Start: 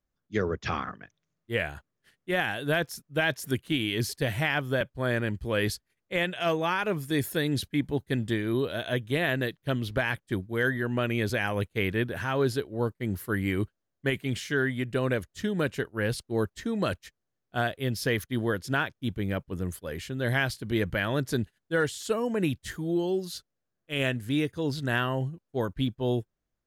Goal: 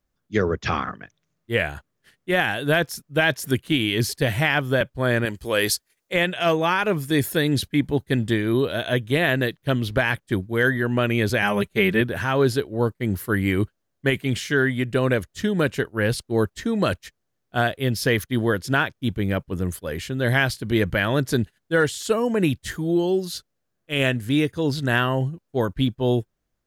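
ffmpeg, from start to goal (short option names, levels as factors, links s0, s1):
-filter_complex "[0:a]asettb=1/sr,asplit=3[s0][s1][s2];[s0]atrim=end=5.254[s3];[s1]atrim=start=5.25:end=6.14,asetpts=PTS-STARTPTS,afade=t=in:d=0.004:c=qsin,afade=t=out:st=0.886:d=0.004:c=qsin,bass=f=250:g=-10,treble=f=4000:g=8[s4];[s2]atrim=start=6.136[s5];[s3][s4]acrossfade=d=0.004:c1=hsin:c2=qsin[s6];[s6][s5]acrossfade=d=0.004:c1=qsin:c2=hsin,asettb=1/sr,asplit=3[s7][s8][s9];[s7]atrim=end=11.424[s10];[s8]atrim=start=11.42:end=12.01,asetpts=PTS-STARTPTS,afade=t=in:d=0.004:c=qsin,afade=t=out:st=0.586:d=0.004:c=qsin,aecho=1:1:5.1:0.78,atrim=end_sample=26019[s11];[s9]atrim=start=12.006[s12];[s10][s11]acrossfade=d=0.004:c1=hsin:c2=qsin[s13];[s13][s12]acrossfade=d=0.004:c1=qsin:c2=hsin,volume=2.11"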